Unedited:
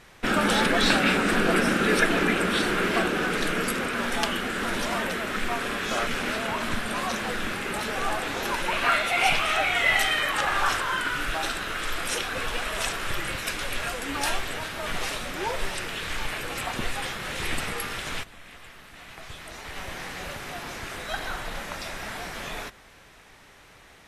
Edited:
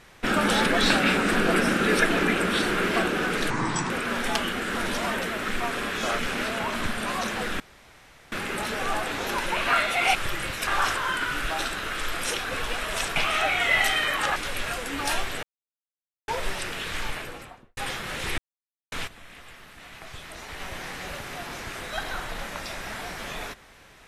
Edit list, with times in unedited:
3.5–3.78 speed 70%
7.48 insert room tone 0.72 s
9.31–10.51 swap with 13–13.52
14.59–15.44 mute
16.16–16.93 studio fade out
17.54–18.08 mute

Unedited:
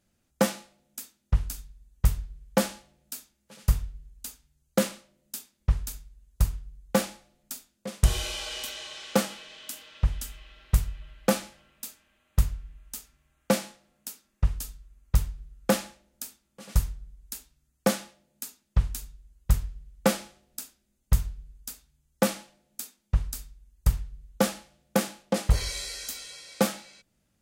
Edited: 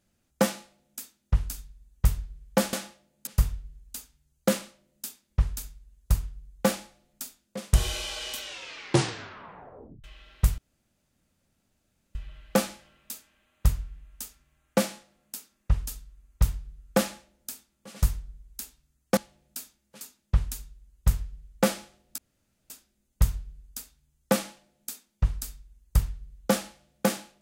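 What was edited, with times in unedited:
2.73–3.57 swap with 17.9–18.44
8.71 tape stop 1.63 s
10.88 insert room tone 1.57 s
20.61 insert room tone 0.52 s

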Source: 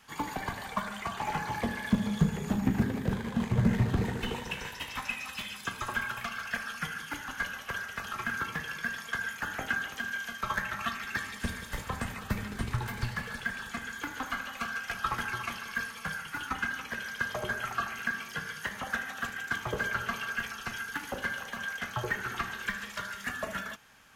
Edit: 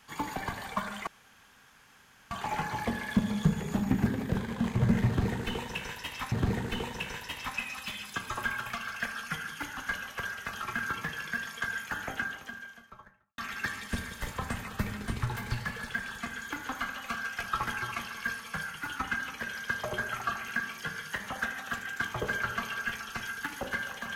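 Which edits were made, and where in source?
1.07 insert room tone 1.24 s
3.83–5.08 loop, 2 plays
9.37–10.89 studio fade out

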